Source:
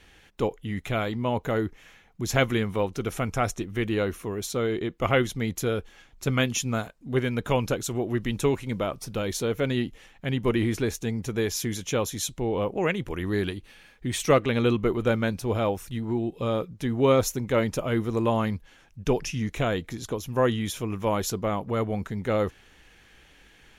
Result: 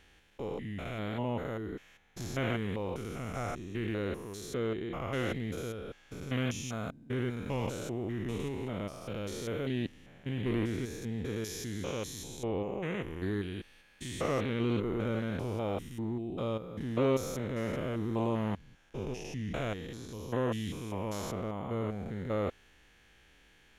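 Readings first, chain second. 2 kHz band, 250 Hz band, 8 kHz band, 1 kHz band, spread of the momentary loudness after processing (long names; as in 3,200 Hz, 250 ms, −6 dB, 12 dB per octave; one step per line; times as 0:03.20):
−10.0 dB, −7.0 dB, −12.0 dB, −10.0 dB, 8 LU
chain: spectrum averaged block by block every 200 ms
highs frequency-modulated by the lows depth 0.13 ms
level −5.5 dB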